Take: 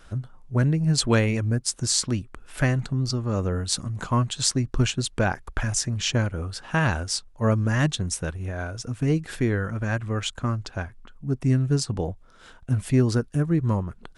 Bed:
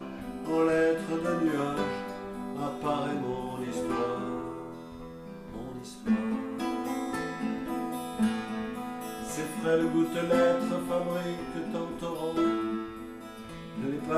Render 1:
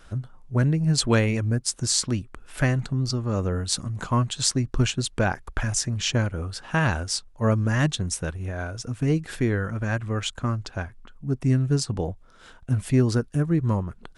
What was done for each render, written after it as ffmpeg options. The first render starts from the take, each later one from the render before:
ffmpeg -i in.wav -af anull out.wav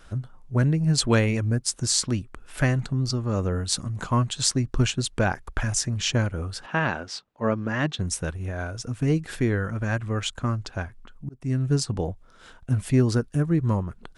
ffmpeg -i in.wav -filter_complex "[0:a]asettb=1/sr,asplit=3[link_01][link_02][link_03];[link_01]atrim=end=6.664[link_04];[link_02]atrim=start=6.66:end=7.99,asetpts=PTS-STARTPTS,afade=type=in:duration=0.004:curve=qsin,afade=type=out:start_time=1.326:duration=0.004:curve=qsin,highpass=190,lowpass=3600[link_05];[link_03]atrim=start=7.986[link_06];[link_04][link_05]acrossfade=duration=0.004:curve1=hsin:curve2=qsin[link_07];[link_07][link_06]acrossfade=duration=0.004:curve1=qsin:curve2=hsin,asplit=2[link_08][link_09];[link_08]atrim=end=11.29,asetpts=PTS-STARTPTS,afade=type=out:start_time=11.286:duration=0.004:curve=hsin[link_10];[link_09]atrim=start=11.29,asetpts=PTS-STARTPTS,afade=type=in:duration=0.4[link_11];[link_10][link_11]concat=n=2:v=0:a=1" out.wav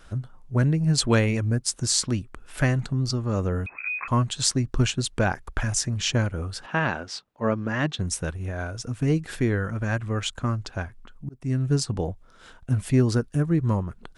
ffmpeg -i in.wav -filter_complex "[0:a]asettb=1/sr,asplit=3[link_01][link_02][link_03];[link_01]atrim=end=3.664[link_04];[link_02]atrim=start=3.66:end=4.08,asetpts=PTS-STARTPTS,afade=type=in:duration=0.004:curve=qsin,afade=type=out:start_time=0.416:duration=0.004:curve=qsin,lowpass=frequency=2200:width_type=q:width=0.5098,lowpass=frequency=2200:width_type=q:width=0.6013,lowpass=frequency=2200:width_type=q:width=0.9,lowpass=frequency=2200:width_type=q:width=2.563,afreqshift=-2600[link_05];[link_03]atrim=start=4.076[link_06];[link_04][link_05]acrossfade=duration=0.004:curve1=hsin:curve2=qsin[link_07];[link_07][link_06]acrossfade=duration=0.004:curve1=qsin:curve2=hsin" out.wav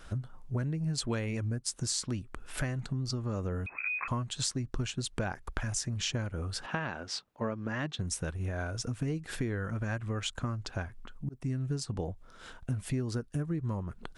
ffmpeg -i in.wav -af "acompressor=threshold=-31dB:ratio=5" out.wav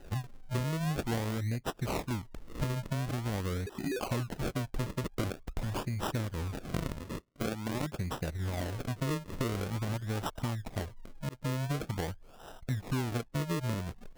ffmpeg -i in.wav -af "acrusher=samples=39:mix=1:aa=0.000001:lfo=1:lforange=39:lforate=0.46" out.wav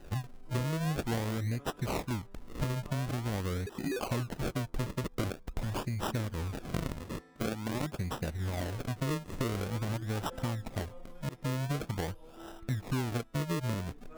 ffmpeg -i in.wav -i bed.wav -filter_complex "[1:a]volume=-24.5dB[link_01];[0:a][link_01]amix=inputs=2:normalize=0" out.wav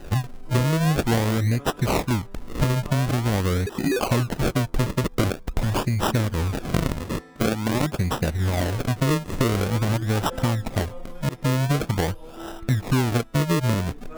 ffmpeg -i in.wav -af "volume=11.5dB" out.wav

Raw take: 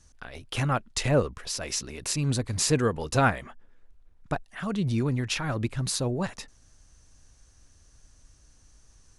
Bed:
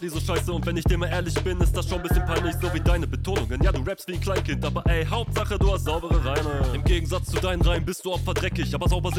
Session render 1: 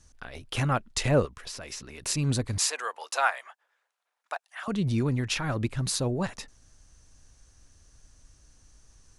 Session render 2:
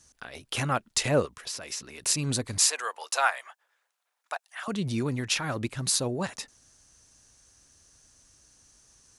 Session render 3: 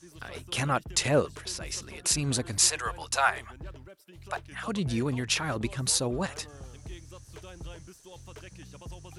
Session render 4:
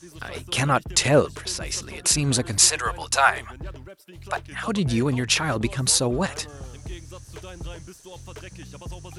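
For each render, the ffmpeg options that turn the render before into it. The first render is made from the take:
ffmpeg -i in.wav -filter_complex "[0:a]asettb=1/sr,asplit=3[link_01][link_02][link_03];[link_01]atrim=end=1.254[link_04];[link_02]atrim=start=1.25:end=2.06,asetpts=PTS-STARTPTS,afade=type=in:duration=0.004:curve=qsin,afade=type=out:start_time=0.806:duration=0.004:curve=qsin,acrossover=split=870|2600[link_05][link_06][link_07];[link_05]acompressor=threshold=-43dB:ratio=4[link_08];[link_06]acompressor=threshold=-46dB:ratio=4[link_09];[link_07]acompressor=threshold=-40dB:ratio=4[link_10];[link_08][link_09][link_10]amix=inputs=3:normalize=0[link_11];[link_03]atrim=start=2.056[link_12];[link_04][link_11]acrossfade=duration=0.004:curve1=hsin:curve2=qsin[link_13];[link_13][link_12]acrossfade=duration=0.004:curve1=qsin:curve2=hsin,asettb=1/sr,asplit=3[link_14][link_15][link_16];[link_14]atrim=end=2.584[link_17];[link_15]atrim=start=2.58:end=4.68,asetpts=PTS-STARTPTS,afade=type=in:duration=0.004:curve=qsin,afade=type=out:start_time=2.096:duration=0.004:curve=qsin,highpass=frequency=700:width=0.5412,highpass=frequency=700:width=1.3066[link_18];[link_16]atrim=start=4.676[link_19];[link_17][link_18]acrossfade=duration=0.004:curve1=hsin:curve2=qsin[link_20];[link_20][link_19]acrossfade=duration=0.004:curve1=qsin:curve2=hsin" out.wav
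ffmpeg -i in.wav -af "highpass=frequency=180:poles=1,highshelf=frequency=4500:gain=6.5" out.wav
ffmpeg -i in.wav -i bed.wav -filter_complex "[1:a]volume=-21.5dB[link_01];[0:a][link_01]amix=inputs=2:normalize=0" out.wav
ffmpeg -i in.wav -af "volume=6.5dB,alimiter=limit=-2dB:level=0:latency=1" out.wav

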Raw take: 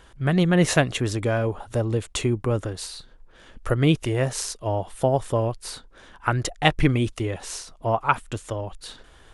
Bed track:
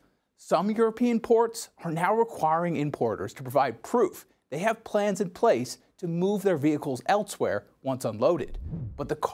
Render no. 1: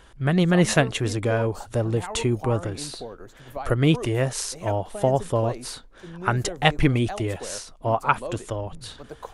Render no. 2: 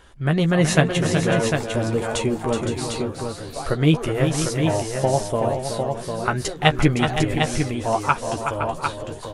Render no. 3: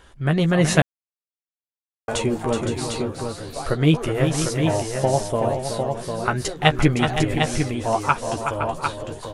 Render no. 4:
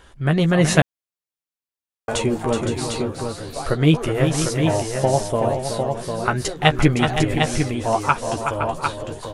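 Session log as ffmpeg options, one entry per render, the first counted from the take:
ffmpeg -i in.wav -i bed.wav -filter_complex "[1:a]volume=-10.5dB[link_01];[0:a][link_01]amix=inputs=2:normalize=0" out.wav
ffmpeg -i in.wav -filter_complex "[0:a]asplit=2[link_01][link_02];[link_02]adelay=13,volume=-6.5dB[link_03];[link_01][link_03]amix=inputs=2:normalize=0,asplit=2[link_04][link_05];[link_05]aecho=0:1:373|515|751:0.422|0.335|0.531[link_06];[link_04][link_06]amix=inputs=2:normalize=0" out.wav
ffmpeg -i in.wav -filter_complex "[0:a]asplit=3[link_01][link_02][link_03];[link_01]atrim=end=0.82,asetpts=PTS-STARTPTS,afade=type=out:start_time=0.816:duration=0.004:curve=hsin[link_04];[link_02]atrim=start=0.82:end=2.08,asetpts=PTS-STARTPTS,volume=0[link_05];[link_03]atrim=start=2.08,asetpts=PTS-STARTPTS,afade=type=in:duration=0.004:curve=hsin[link_06];[link_04][link_05][link_06]concat=n=3:v=0:a=1" out.wav
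ffmpeg -i in.wav -af "volume=1.5dB,alimiter=limit=-1dB:level=0:latency=1" out.wav

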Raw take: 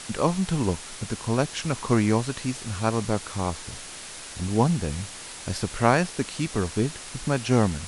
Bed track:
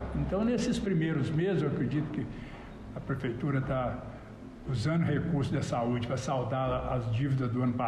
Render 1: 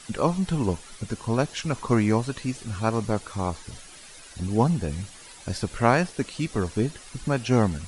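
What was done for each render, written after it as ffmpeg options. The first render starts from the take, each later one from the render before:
ffmpeg -i in.wav -af "afftdn=noise_reduction=11:noise_floor=-40" out.wav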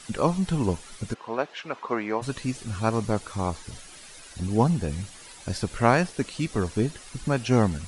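ffmpeg -i in.wav -filter_complex "[0:a]asplit=3[link_01][link_02][link_03];[link_01]afade=type=out:start_time=1.13:duration=0.02[link_04];[link_02]highpass=440,lowpass=2700,afade=type=in:start_time=1.13:duration=0.02,afade=type=out:start_time=2.21:duration=0.02[link_05];[link_03]afade=type=in:start_time=2.21:duration=0.02[link_06];[link_04][link_05][link_06]amix=inputs=3:normalize=0" out.wav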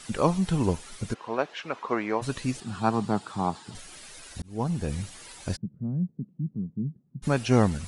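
ffmpeg -i in.wav -filter_complex "[0:a]asettb=1/sr,asplit=3[link_01][link_02][link_03];[link_01]atrim=end=2.604[link_04];[link_02]atrim=start=2.6:end=3.75,asetpts=PTS-STARTPTS,afade=type=in:duration=0.004:curve=qsin,afade=type=out:start_time=1.146:duration=0.004:curve=qsin,highpass=frequency=120:width=0.5412,highpass=frequency=120:width=1.3066,equalizer=frequency=200:width_type=q:width=4:gain=3,equalizer=frequency=530:width_type=q:width=4:gain=-9,equalizer=frequency=810:width_type=q:width=4:gain=6,equalizer=frequency=2200:width_type=q:width=4:gain=-8,equalizer=frequency=6100:width_type=q:width=4:gain=-10,lowpass=frequency=8200:width=0.5412,lowpass=frequency=8200:width=1.3066[link_05];[link_03]atrim=start=3.746[link_06];[link_04][link_05]acrossfade=duration=0.004:curve1=hsin:curve2=qsin[link_07];[link_07][link_06]acrossfade=duration=0.004:curve1=qsin:curve2=hsin,asplit=3[link_08][link_09][link_10];[link_08]afade=type=out:start_time=5.55:duration=0.02[link_11];[link_09]asuperpass=centerf=170:order=4:qfactor=1.9,afade=type=in:start_time=5.55:duration=0.02,afade=type=out:start_time=7.22:duration=0.02[link_12];[link_10]afade=type=in:start_time=7.22:duration=0.02[link_13];[link_11][link_12][link_13]amix=inputs=3:normalize=0,asplit=2[link_14][link_15];[link_14]atrim=end=4.42,asetpts=PTS-STARTPTS,afade=type=out:start_time=4.416:duration=0.004:curve=hsin[link_16];[link_15]atrim=start=4.42,asetpts=PTS-STARTPTS,afade=type=in:duration=0.52[link_17];[link_16][link_17]concat=n=2:v=0:a=1" out.wav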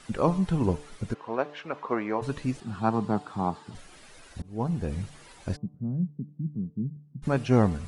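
ffmpeg -i in.wav -af "highshelf=frequency=2900:gain=-11,bandreject=frequency=147.4:width_type=h:width=4,bandreject=frequency=294.8:width_type=h:width=4,bandreject=frequency=442.2:width_type=h:width=4,bandreject=frequency=589.6:width_type=h:width=4,bandreject=frequency=737:width_type=h:width=4,bandreject=frequency=884.4:width_type=h:width=4,bandreject=frequency=1031.8:width_type=h:width=4,bandreject=frequency=1179.2:width_type=h:width=4" out.wav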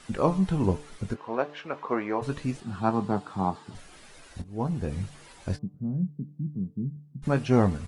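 ffmpeg -i in.wav -filter_complex "[0:a]asplit=2[link_01][link_02];[link_02]adelay=21,volume=-11dB[link_03];[link_01][link_03]amix=inputs=2:normalize=0" out.wav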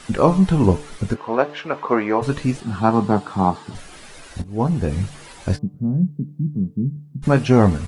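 ffmpeg -i in.wav -af "volume=9.5dB,alimiter=limit=-1dB:level=0:latency=1" out.wav

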